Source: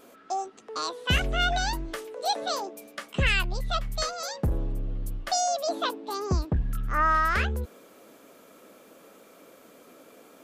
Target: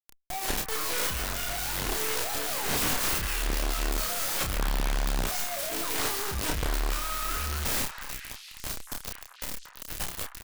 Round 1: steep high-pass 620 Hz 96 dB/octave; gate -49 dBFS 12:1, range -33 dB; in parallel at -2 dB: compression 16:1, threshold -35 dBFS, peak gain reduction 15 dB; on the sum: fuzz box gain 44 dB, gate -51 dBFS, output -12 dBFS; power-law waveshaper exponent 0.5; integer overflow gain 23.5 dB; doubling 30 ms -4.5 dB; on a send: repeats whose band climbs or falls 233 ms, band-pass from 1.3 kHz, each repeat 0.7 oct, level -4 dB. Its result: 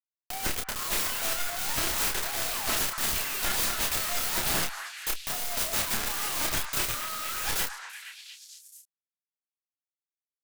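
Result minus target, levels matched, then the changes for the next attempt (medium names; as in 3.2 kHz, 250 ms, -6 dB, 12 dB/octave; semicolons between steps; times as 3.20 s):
compression: peak gain reduction -9 dB; 500 Hz band -5.5 dB
change: compression 16:1, threshold -42.5 dBFS, peak gain reduction 24 dB; remove: steep high-pass 620 Hz 96 dB/octave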